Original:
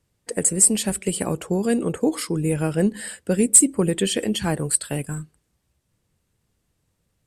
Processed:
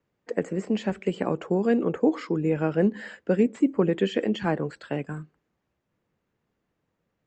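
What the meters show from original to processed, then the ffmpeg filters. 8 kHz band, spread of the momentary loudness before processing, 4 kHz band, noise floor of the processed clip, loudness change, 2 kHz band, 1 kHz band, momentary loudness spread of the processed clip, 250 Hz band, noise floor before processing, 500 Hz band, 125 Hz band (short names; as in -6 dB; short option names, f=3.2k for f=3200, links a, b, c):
under -35 dB, 14 LU, -10.5 dB, -79 dBFS, -6.0 dB, -2.0 dB, 0.0 dB, 9 LU, -2.0 dB, -73 dBFS, 0.0 dB, -4.5 dB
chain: -filter_complex "[0:a]acrossover=split=3100[a][b];[b]acompressor=threshold=-27dB:ratio=4:attack=1:release=60[c];[a][c]amix=inputs=2:normalize=0,aresample=16000,aresample=44100,acrossover=split=170 2500:gain=0.2 1 0.178[d][e][f];[d][e][f]amix=inputs=3:normalize=0"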